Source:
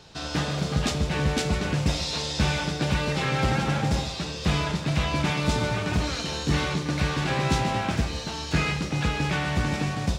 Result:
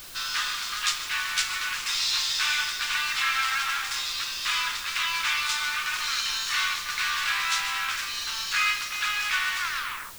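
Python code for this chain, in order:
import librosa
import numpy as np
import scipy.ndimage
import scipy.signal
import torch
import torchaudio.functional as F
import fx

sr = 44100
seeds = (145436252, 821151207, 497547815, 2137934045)

p1 = fx.tape_stop_end(x, sr, length_s=0.58)
p2 = scipy.signal.sosfilt(scipy.signal.butter(8, 1100.0, 'highpass', fs=sr, output='sos'), p1)
p3 = fx.quant_dither(p2, sr, seeds[0], bits=6, dither='triangular')
p4 = p2 + (p3 * 10.0 ** (-11.0 / 20.0))
p5 = fx.dmg_noise_colour(p4, sr, seeds[1], colour='brown', level_db=-57.0)
y = p5 * 10.0 ** (3.0 / 20.0)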